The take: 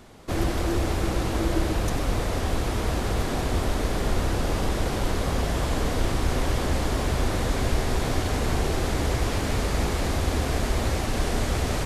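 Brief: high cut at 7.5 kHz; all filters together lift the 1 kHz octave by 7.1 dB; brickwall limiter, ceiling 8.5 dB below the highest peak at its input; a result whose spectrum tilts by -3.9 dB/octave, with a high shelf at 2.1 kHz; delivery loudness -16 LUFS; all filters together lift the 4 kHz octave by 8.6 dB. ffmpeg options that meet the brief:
-af "lowpass=7500,equalizer=f=1000:t=o:g=7.5,highshelf=f=2100:g=6.5,equalizer=f=4000:t=o:g=4.5,volume=3.35,alimiter=limit=0.501:level=0:latency=1"

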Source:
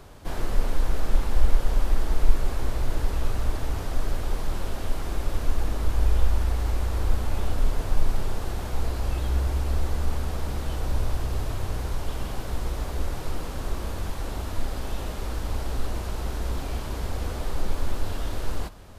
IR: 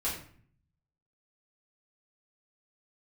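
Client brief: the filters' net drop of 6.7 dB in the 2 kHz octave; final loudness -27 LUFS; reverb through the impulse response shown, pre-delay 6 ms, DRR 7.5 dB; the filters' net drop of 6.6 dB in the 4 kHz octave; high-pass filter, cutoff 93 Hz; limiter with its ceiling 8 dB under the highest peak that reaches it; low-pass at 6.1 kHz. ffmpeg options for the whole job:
-filter_complex "[0:a]highpass=93,lowpass=6100,equalizer=f=2000:t=o:g=-8,equalizer=f=4000:t=o:g=-5,alimiter=level_in=1.68:limit=0.0631:level=0:latency=1,volume=0.596,asplit=2[s0][s1];[1:a]atrim=start_sample=2205,adelay=6[s2];[s1][s2]afir=irnorm=-1:irlink=0,volume=0.224[s3];[s0][s3]amix=inputs=2:normalize=0,volume=3.35"

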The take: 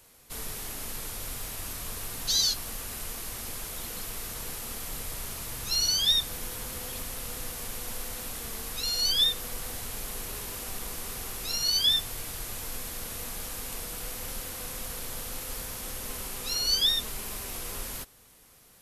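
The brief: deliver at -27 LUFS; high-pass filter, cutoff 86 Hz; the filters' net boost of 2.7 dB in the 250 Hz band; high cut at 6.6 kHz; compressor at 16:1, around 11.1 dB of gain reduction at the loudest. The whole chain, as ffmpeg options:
-af "highpass=86,lowpass=6600,equalizer=f=250:t=o:g=3.5,acompressor=threshold=0.0282:ratio=16,volume=3.35"

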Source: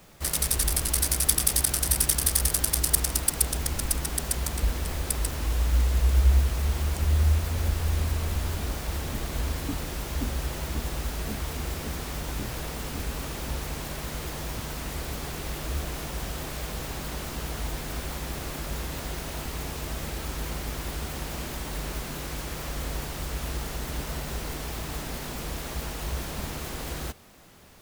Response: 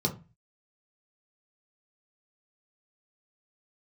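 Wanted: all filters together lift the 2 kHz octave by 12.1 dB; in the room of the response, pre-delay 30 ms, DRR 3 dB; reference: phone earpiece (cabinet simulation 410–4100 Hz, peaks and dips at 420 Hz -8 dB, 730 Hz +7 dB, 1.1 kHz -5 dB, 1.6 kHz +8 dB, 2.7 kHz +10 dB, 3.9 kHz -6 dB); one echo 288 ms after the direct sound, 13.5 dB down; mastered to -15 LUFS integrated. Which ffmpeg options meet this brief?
-filter_complex "[0:a]equalizer=f=2000:t=o:g=8,aecho=1:1:288:0.211,asplit=2[s0][s1];[1:a]atrim=start_sample=2205,adelay=30[s2];[s1][s2]afir=irnorm=-1:irlink=0,volume=0.299[s3];[s0][s3]amix=inputs=2:normalize=0,highpass=410,equalizer=f=420:t=q:w=4:g=-8,equalizer=f=730:t=q:w=4:g=7,equalizer=f=1100:t=q:w=4:g=-5,equalizer=f=1600:t=q:w=4:g=8,equalizer=f=2700:t=q:w=4:g=10,equalizer=f=3900:t=q:w=4:g=-6,lowpass=f=4100:w=0.5412,lowpass=f=4100:w=1.3066,volume=5.31"

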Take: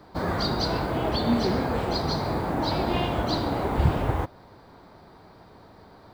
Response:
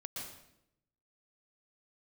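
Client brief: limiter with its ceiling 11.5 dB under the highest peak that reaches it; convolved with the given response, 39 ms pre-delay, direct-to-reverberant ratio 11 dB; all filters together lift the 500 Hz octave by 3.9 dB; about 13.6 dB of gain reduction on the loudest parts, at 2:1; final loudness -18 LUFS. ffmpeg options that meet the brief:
-filter_complex "[0:a]equalizer=f=500:t=o:g=5,acompressor=threshold=0.01:ratio=2,alimiter=level_in=2.66:limit=0.0631:level=0:latency=1,volume=0.376,asplit=2[s0][s1];[1:a]atrim=start_sample=2205,adelay=39[s2];[s1][s2]afir=irnorm=-1:irlink=0,volume=0.316[s3];[s0][s3]amix=inputs=2:normalize=0,volume=15.8"

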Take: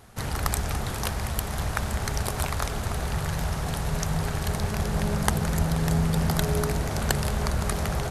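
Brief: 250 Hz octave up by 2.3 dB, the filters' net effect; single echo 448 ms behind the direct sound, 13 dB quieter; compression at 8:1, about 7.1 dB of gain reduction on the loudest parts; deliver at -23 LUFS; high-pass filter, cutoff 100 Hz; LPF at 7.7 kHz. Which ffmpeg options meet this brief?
-af "highpass=100,lowpass=7700,equalizer=f=250:t=o:g=4.5,acompressor=threshold=0.0501:ratio=8,aecho=1:1:448:0.224,volume=2.51"

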